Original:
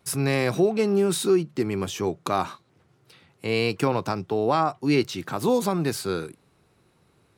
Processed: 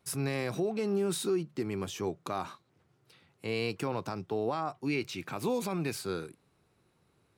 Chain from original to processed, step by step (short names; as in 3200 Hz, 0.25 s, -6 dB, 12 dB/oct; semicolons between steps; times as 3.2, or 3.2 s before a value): 4.85–5.98 bell 2400 Hz +11 dB 0.25 oct; limiter -15 dBFS, peak gain reduction 5.5 dB; gain -7.5 dB